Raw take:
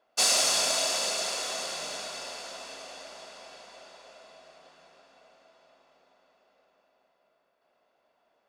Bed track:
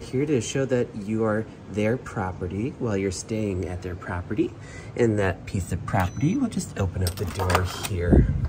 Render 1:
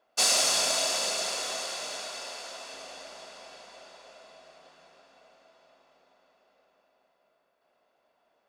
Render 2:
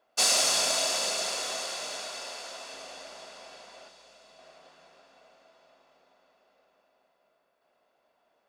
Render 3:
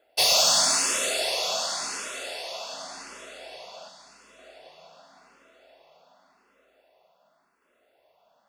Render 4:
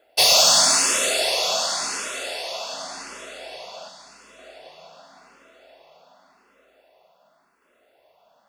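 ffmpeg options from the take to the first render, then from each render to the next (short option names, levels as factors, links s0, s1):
-filter_complex "[0:a]asettb=1/sr,asplit=3[s0][s1][s2];[s0]atrim=end=1.574[s3];[s1]atrim=start=1.57:end=2.74,asetpts=PTS-STARTPTS,afade=t=in:d=0.004:c=qsin,afade=t=out:st=1.166:d=0.004:c=qsin,equalizer=f=100:t=o:w=1.9:g=-11[s4];[s2]atrim=start=2.736[s5];[s3][s4]acrossfade=d=0.004:c1=hsin:c2=qsin[s6];[s6][s5]acrossfade=d=0.004:c1=qsin:c2=hsin"
-filter_complex "[0:a]asettb=1/sr,asplit=3[s0][s1][s2];[s0]atrim=end=3.884[s3];[s1]atrim=start=3.88:end=4.39,asetpts=PTS-STARTPTS,afade=t=in:d=0.004:c=qsin,afade=t=out:st=0.506:d=0.004:c=qsin,acrossover=split=210|3000[s4][s5][s6];[s5]acompressor=threshold=0.00178:ratio=6:attack=3.2:release=140:knee=2.83:detection=peak[s7];[s4][s7][s6]amix=inputs=3:normalize=0[s8];[s2]atrim=start=4.386[s9];[s3][s8]acrossfade=d=0.004:c1=hsin:c2=qsin[s10];[s10][s9]acrossfade=d=0.004:c1=qsin:c2=hsin"
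-filter_complex "[0:a]aeval=exprs='0.251*sin(PI/2*1.58*val(0)/0.251)':c=same,asplit=2[s0][s1];[s1]afreqshift=0.89[s2];[s0][s2]amix=inputs=2:normalize=1"
-af "volume=1.78"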